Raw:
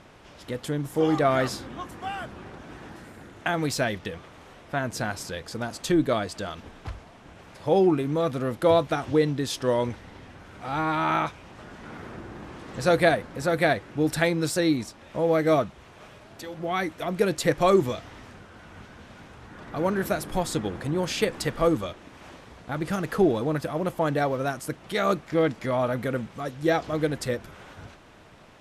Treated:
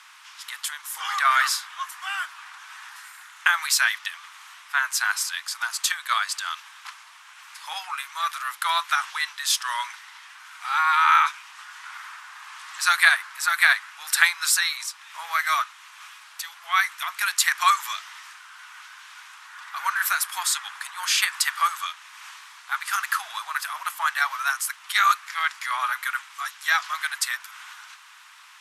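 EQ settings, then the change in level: dynamic bell 1.5 kHz, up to +4 dB, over -38 dBFS, Q 1.4; steep high-pass 1 kHz 48 dB/octave; treble shelf 6.1 kHz +8.5 dB; +6.5 dB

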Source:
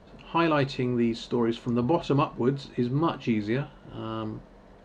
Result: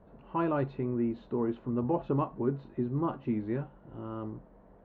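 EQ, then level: low-pass 1.2 kHz 12 dB/octave; -5.0 dB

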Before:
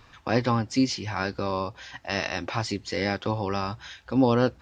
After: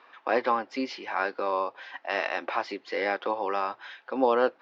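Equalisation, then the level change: Bessel high-pass 540 Hz, order 4; distance through air 240 m; treble shelf 3.6 kHz -8.5 dB; +5.0 dB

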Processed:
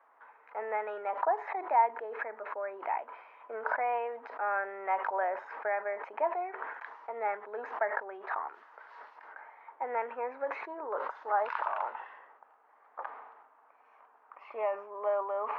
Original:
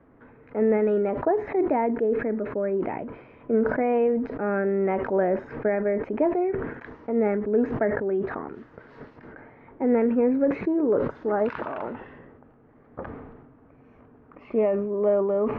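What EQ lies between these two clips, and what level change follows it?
ladder high-pass 770 Hz, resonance 50%; +6.0 dB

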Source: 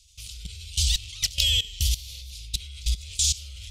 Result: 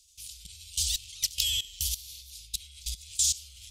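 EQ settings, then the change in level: pre-emphasis filter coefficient 0.8; 0.0 dB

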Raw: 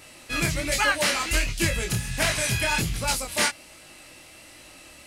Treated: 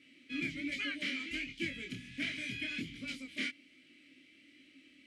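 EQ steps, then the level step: vowel filter i; treble shelf 12 kHz -6 dB; 0.0 dB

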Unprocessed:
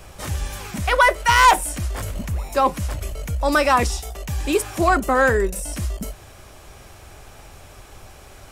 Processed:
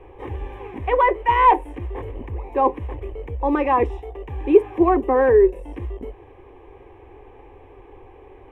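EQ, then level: distance through air 410 m; peaking EQ 440 Hz +13.5 dB 2.1 oct; static phaser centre 930 Hz, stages 8; -4.0 dB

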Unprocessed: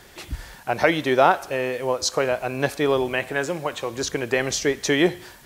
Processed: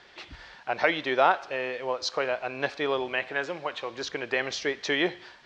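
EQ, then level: low-pass 4.7 kHz 24 dB/octave; bass shelf 180 Hz -9.5 dB; bass shelf 490 Hz -6.5 dB; -2.5 dB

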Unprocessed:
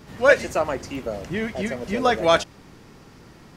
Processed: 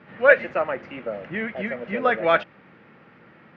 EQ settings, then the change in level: cabinet simulation 250–2400 Hz, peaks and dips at 280 Hz -8 dB, 400 Hz -9 dB, 710 Hz -6 dB, 1 kHz -8 dB; +3.5 dB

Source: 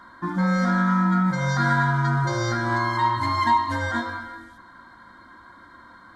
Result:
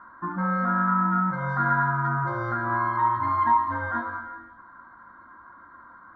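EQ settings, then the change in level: resonant low-pass 1.3 kHz, resonance Q 2.9; -6.5 dB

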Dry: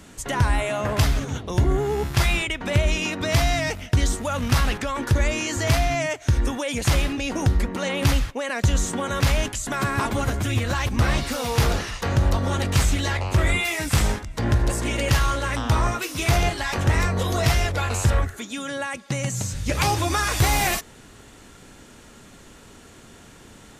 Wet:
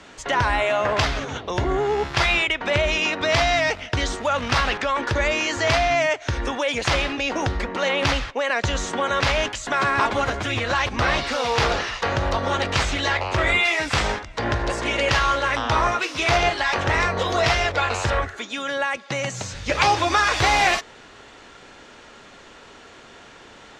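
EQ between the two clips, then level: three-band isolator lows -13 dB, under 390 Hz, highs -22 dB, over 6.4 kHz; treble shelf 10 kHz -11 dB; +6.0 dB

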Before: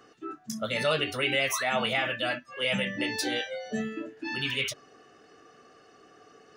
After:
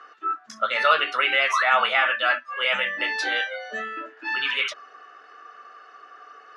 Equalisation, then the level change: band-pass 620–4200 Hz; peaking EQ 1.3 kHz +12.5 dB 0.95 oct; +3.5 dB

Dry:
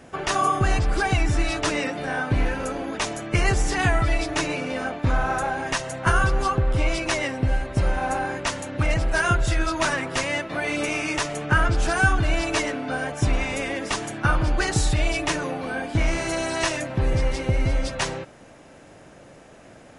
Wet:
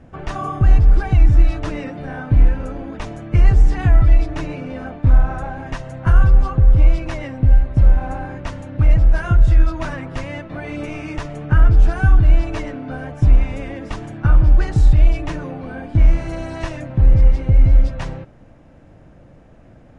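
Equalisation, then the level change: RIAA curve playback; band-stop 400 Hz, Q 12; -5.0 dB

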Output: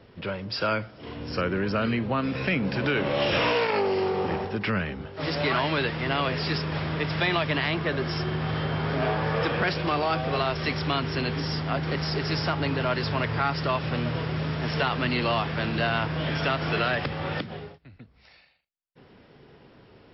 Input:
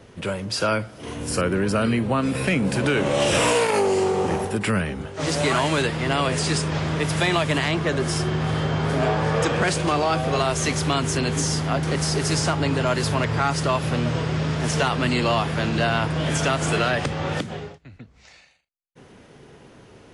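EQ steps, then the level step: dynamic bell 2 kHz, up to +3 dB, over -33 dBFS, Q 0.76; brick-wall FIR low-pass 5.6 kHz; -5.0 dB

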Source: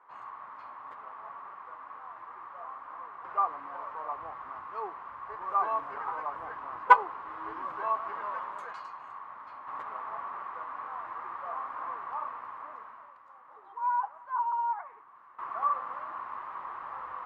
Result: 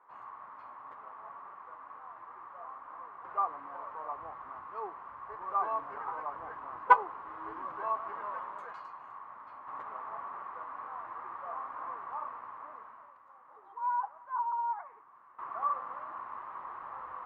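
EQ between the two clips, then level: treble shelf 2.3 kHz -9 dB; -1.5 dB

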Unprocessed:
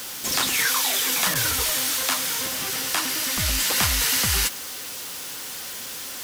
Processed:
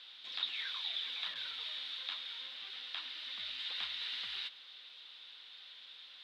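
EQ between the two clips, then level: band-pass filter 3.7 kHz, Q 7.4; distance through air 450 m; +5.0 dB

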